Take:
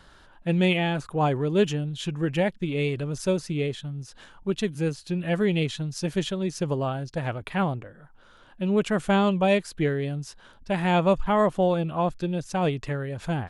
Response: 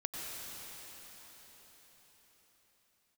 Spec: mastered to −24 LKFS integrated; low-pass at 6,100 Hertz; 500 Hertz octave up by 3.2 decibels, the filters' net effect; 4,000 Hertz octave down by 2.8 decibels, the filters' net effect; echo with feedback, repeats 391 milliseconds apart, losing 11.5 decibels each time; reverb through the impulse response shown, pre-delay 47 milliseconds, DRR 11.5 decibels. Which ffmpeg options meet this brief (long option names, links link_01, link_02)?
-filter_complex "[0:a]lowpass=6100,equalizer=frequency=500:width_type=o:gain=4,equalizer=frequency=4000:width_type=o:gain=-3.5,aecho=1:1:391|782|1173:0.266|0.0718|0.0194,asplit=2[link_01][link_02];[1:a]atrim=start_sample=2205,adelay=47[link_03];[link_02][link_03]afir=irnorm=-1:irlink=0,volume=-14dB[link_04];[link_01][link_04]amix=inputs=2:normalize=0"